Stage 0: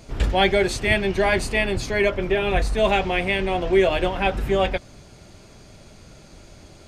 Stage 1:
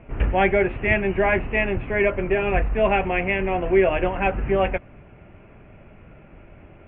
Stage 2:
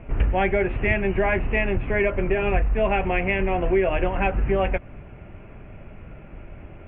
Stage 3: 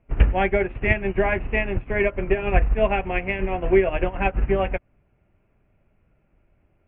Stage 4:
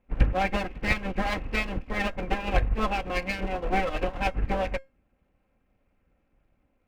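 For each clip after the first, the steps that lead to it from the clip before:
steep low-pass 2800 Hz 72 dB/oct
low shelf 81 Hz +7 dB; compressor 2.5:1, threshold -22 dBFS, peak gain reduction 7.5 dB; gain +2.5 dB
upward expander 2.5:1, over -35 dBFS; gain +7 dB
minimum comb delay 3.8 ms; resonator 540 Hz, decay 0.24 s, harmonics all, mix 40%

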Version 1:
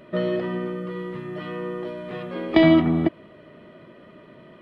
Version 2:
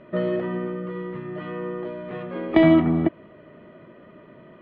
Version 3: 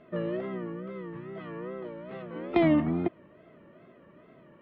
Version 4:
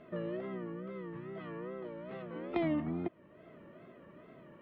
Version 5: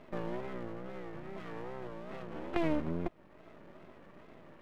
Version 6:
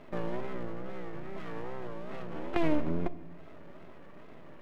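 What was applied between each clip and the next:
LPF 2400 Hz 12 dB/oct
wow and flutter 130 cents; gain -7.5 dB
compressor 1.5:1, threshold -47 dBFS, peak gain reduction 10 dB
half-wave rectifier; gain +4 dB
shoebox room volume 710 m³, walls mixed, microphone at 0.31 m; gain +2.5 dB

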